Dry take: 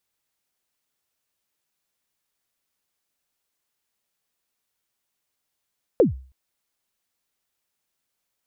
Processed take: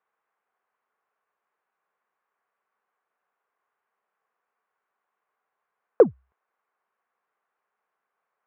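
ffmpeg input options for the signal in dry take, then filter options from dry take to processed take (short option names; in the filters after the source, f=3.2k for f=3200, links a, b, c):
-f lavfi -i "aevalsrc='0.355*pow(10,-3*t/0.41)*sin(2*PI*(560*0.135/log(65/560)*(exp(log(65/560)*min(t,0.135)/0.135)-1)+65*max(t-0.135,0)))':d=0.32:s=44100"
-filter_complex "[0:a]asplit=2[a][b];[b]asoftclip=type=tanh:threshold=-18.5dB,volume=-9.5dB[c];[a][c]amix=inputs=2:normalize=0,highpass=280,equalizer=f=290:t=q:w=4:g=-9,equalizer=f=440:t=q:w=4:g=6,equalizer=f=760:t=q:w=4:g=6,equalizer=f=1.1k:t=q:w=4:g=10,equalizer=f=1.5k:t=q:w=4:g=5,lowpass=f=2.1k:w=0.5412,lowpass=f=2.1k:w=1.3066"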